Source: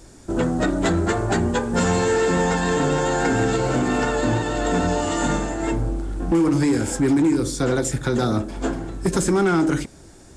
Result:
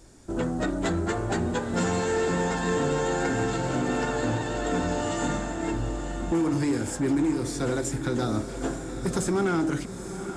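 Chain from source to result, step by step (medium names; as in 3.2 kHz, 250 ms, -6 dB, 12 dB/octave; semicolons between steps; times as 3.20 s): echo that smears into a reverb 902 ms, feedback 47%, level -9 dB; trim -6.5 dB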